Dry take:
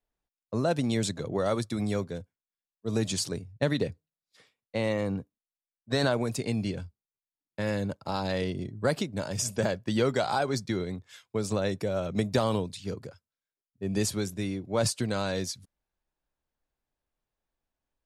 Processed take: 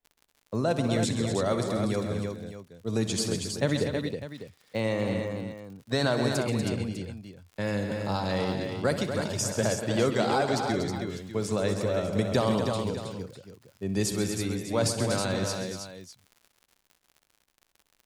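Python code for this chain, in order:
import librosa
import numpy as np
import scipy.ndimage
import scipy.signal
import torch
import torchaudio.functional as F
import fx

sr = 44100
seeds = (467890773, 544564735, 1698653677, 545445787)

y = fx.dmg_crackle(x, sr, seeds[0], per_s=27.0, level_db=-41.0)
y = fx.echo_multitap(y, sr, ms=(63, 133, 172, 240, 319, 600), db=(-13.5, -11.0, -19.5, -8.5, -6.0, -13.5))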